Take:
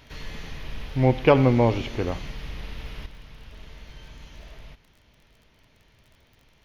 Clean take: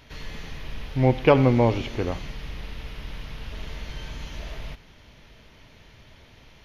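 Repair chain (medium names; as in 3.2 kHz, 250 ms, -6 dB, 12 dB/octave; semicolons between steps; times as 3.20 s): de-click; trim 0 dB, from 3.06 s +8.5 dB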